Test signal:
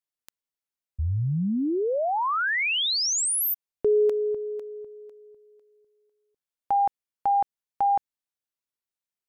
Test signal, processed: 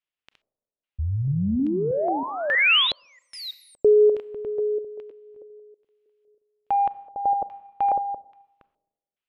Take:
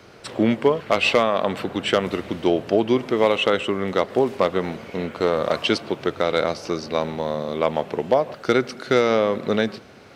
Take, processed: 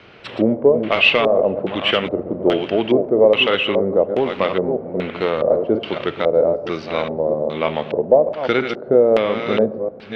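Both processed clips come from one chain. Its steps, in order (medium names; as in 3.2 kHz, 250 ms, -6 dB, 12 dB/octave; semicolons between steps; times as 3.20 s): chunks repeated in reverse 319 ms, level -7.5 dB; in parallel at -6 dB: saturation -13 dBFS; on the sum: Schroeder reverb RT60 0.96 s, combs from 29 ms, DRR 16 dB; LFO low-pass square 1.2 Hz 570–2900 Hz; trim -3 dB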